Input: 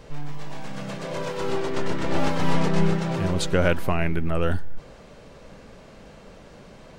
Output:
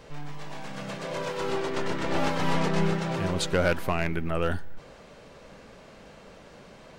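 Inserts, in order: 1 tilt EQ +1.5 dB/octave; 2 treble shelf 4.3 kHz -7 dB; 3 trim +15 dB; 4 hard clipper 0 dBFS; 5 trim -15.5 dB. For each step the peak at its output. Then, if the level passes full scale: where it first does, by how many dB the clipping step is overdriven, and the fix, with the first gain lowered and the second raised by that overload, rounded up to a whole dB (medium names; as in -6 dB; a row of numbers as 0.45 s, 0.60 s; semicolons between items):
-6.0 dBFS, -7.0 dBFS, +8.0 dBFS, 0.0 dBFS, -15.5 dBFS; step 3, 8.0 dB; step 3 +7 dB, step 5 -7.5 dB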